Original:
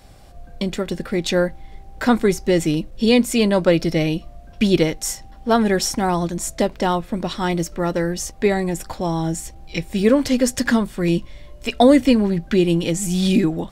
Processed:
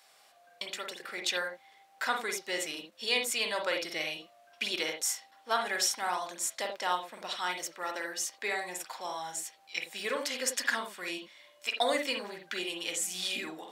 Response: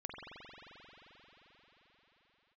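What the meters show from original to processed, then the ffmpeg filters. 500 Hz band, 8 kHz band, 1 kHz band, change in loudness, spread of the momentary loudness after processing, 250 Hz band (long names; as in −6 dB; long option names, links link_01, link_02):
−17.5 dB, −6.0 dB, −9.5 dB, −13.5 dB, 10 LU, −28.0 dB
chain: -filter_complex "[0:a]highpass=1100[link_01];[1:a]atrim=start_sample=2205,atrim=end_sample=3969[link_02];[link_01][link_02]afir=irnorm=-1:irlink=0"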